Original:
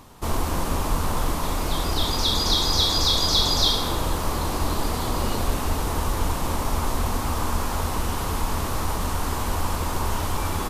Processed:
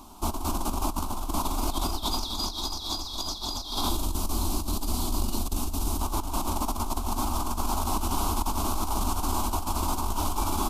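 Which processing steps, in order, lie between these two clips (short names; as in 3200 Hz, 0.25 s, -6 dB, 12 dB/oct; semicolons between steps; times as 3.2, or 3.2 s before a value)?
3.89–6.01 bell 1000 Hz -8.5 dB 2.7 oct; negative-ratio compressor -25 dBFS, ratio -0.5; fixed phaser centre 490 Hz, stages 6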